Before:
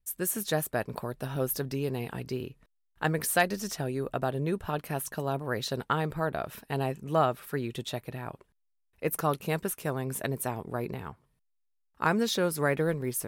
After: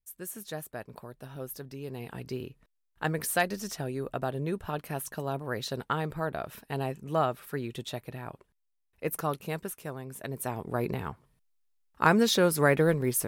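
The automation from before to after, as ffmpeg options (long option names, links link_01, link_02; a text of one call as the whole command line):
ffmpeg -i in.wav -af "volume=11dB,afade=type=in:start_time=1.78:duration=0.53:silence=0.421697,afade=type=out:start_time=9.06:duration=1.11:silence=0.446684,afade=type=in:start_time=10.17:duration=0.74:silence=0.223872" out.wav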